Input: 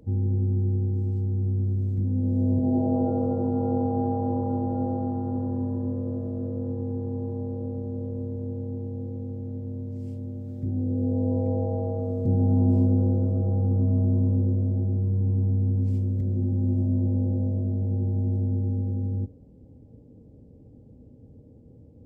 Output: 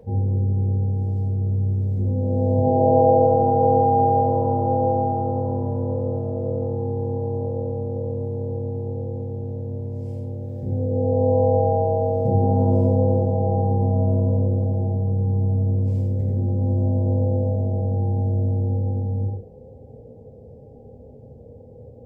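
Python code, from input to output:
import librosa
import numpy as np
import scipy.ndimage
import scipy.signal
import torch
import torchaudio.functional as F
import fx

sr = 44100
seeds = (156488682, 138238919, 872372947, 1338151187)

y = fx.band_shelf(x, sr, hz=620.0, db=13.5, octaves=1.2)
y = y + 10.0 ** (-5.0 / 20.0) * np.pad(y, (int(89 * sr / 1000.0), 0))[:len(y)]
y = fx.rev_gated(y, sr, seeds[0], gate_ms=140, shape='falling', drr_db=-2.0)
y = y * 10.0 ** (-1.5 / 20.0)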